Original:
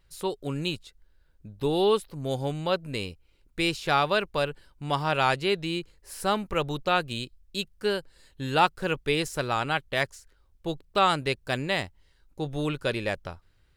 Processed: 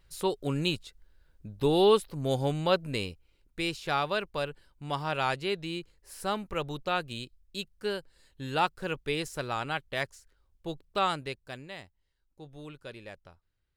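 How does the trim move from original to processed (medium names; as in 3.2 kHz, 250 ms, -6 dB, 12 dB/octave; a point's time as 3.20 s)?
2.82 s +1 dB
3.62 s -5.5 dB
11.05 s -5.5 dB
11.70 s -16 dB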